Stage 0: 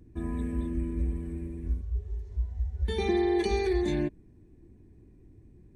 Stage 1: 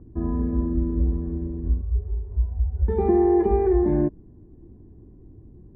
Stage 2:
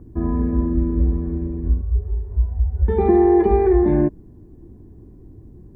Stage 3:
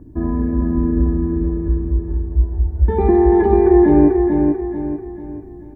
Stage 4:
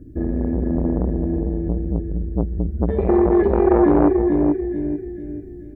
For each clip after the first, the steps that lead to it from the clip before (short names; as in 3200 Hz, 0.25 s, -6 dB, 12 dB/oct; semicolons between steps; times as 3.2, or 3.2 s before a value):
LPF 1200 Hz 24 dB/oct; gain +7.5 dB
high shelf 2000 Hz +9.5 dB; gain +4 dB
small resonant body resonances 290/630/900/1700 Hz, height 10 dB, ringing for 90 ms; on a send: feedback echo 0.44 s, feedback 41%, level -4 dB
Butterworth band-stop 960 Hz, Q 0.99; core saturation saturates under 510 Hz